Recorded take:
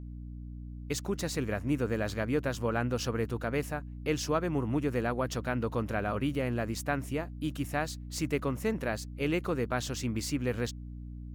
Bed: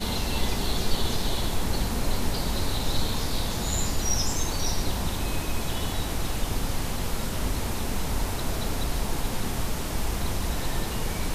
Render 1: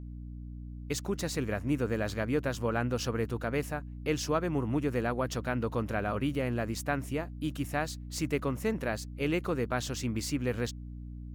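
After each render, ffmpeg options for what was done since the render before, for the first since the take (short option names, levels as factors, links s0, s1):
-af anull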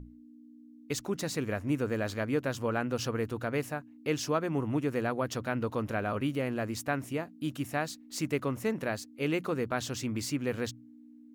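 -af "bandreject=f=60:t=h:w=6,bandreject=f=120:t=h:w=6,bandreject=f=180:t=h:w=6"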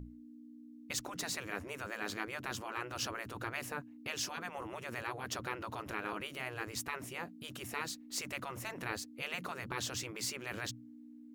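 -af "afftfilt=real='re*lt(hypot(re,im),0.0794)':imag='im*lt(hypot(re,im),0.0794)':win_size=1024:overlap=0.75"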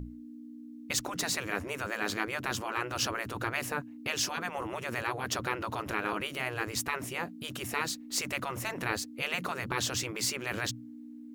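-af "volume=2.24"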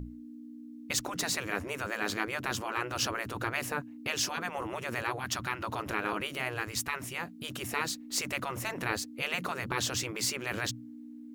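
-filter_complex "[0:a]asettb=1/sr,asplit=3[s0][s1][s2];[s0]atrim=end=5.194[s3];[s1]atrim=start=5.19:end=5.63,asetpts=PTS-STARTPTS,afade=t=in:d=0.004:c=qsin,afade=t=out:st=0.436:d=0.004:c=qsin,equalizer=f=470:t=o:w=0.71:g=-14[s4];[s2]atrim=start=5.626[s5];[s3][s4]acrossfade=d=0.004:c1=hsin:c2=qsin[s6];[s6][s5]acrossfade=d=0.004:c1=qsin:c2=hsin,asettb=1/sr,asplit=3[s7][s8][s9];[s7]atrim=end=6.604[s10];[s8]atrim=start=6.6:end=7.4,asetpts=PTS-STARTPTS,afade=t=in:d=0.004:c=qsin,afade=t=out:st=0.796:d=0.004:c=qsin,equalizer=f=450:t=o:w=1.9:g=-5.5[s11];[s9]atrim=start=7.396[s12];[s10][s11]acrossfade=d=0.004:c1=hsin:c2=qsin[s13];[s13][s12]acrossfade=d=0.004:c1=qsin:c2=hsin"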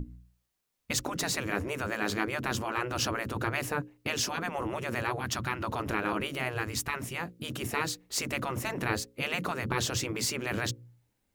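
-af "lowshelf=f=500:g=7,bandreject=f=60:t=h:w=6,bandreject=f=120:t=h:w=6,bandreject=f=180:t=h:w=6,bandreject=f=240:t=h:w=6,bandreject=f=300:t=h:w=6,bandreject=f=360:t=h:w=6,bandreject=f=420:t=h:w=6,bandreject=f=480:t=h:w=6,bandreject=f=540:t=h:w=6"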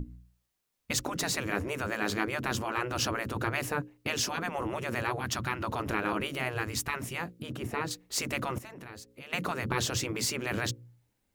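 -filter_complex "[0:a]asettb=1/sr,asplit=3[s0][s1][s2];[s0]atrim=end=7.424[s3];[s1]atrim=start=7.42:end=7.91,asetpts=PTS-STARTPTS,afade=t=in:d=0.004:c=qsin,afade=t=out:st=0.486:d=0.004:c=qsin,highshelf=f=2400:g=-11[s4];[s2]atrim=start=7.906[s5];[s3][s4]acrossfade=d=0.004:c1=hsin:c2=qsin[s6];[s6][s5]acrossfade=d=0.004:c1=qsin:c2=hsin,asettb=1/sr,asplit=3[s7][s8][s9];[s7]atrim=end=8.584[s10];[s8]atrim=start=8.58:end=9.33,asetpts=PTS-STARTPTS,afade=t=in:d=0.004:c=qsin,afade=t=out:st=0.746:d=0.004:c=qsin,acompressor=threshold=0.00447:ratio=3:attack=3.2:release=140:knee=1:detection=peak[s11];[s9]atrim=start=9.326[s12];[s10][s11]acrossfade=d=0.004:c1=hsin:c2=qsin[s13];[s13][s12]acrossfade=d=0.004:c1=qsin:c2=hsin"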